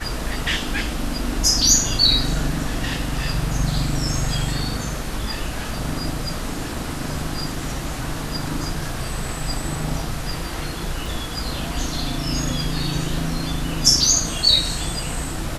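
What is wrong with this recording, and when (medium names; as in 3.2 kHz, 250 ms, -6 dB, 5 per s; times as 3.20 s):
11.06 s: dropout 2.4 ms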